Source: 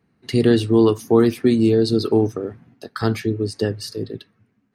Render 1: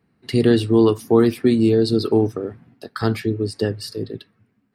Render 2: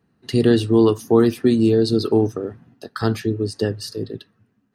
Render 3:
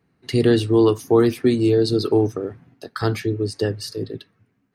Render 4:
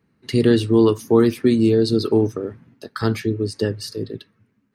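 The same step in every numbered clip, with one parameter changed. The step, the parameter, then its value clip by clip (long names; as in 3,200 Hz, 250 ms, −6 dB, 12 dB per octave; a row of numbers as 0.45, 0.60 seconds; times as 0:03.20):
notch filter, centre frequency: 6,300, 2,200, 220, 730 Hertz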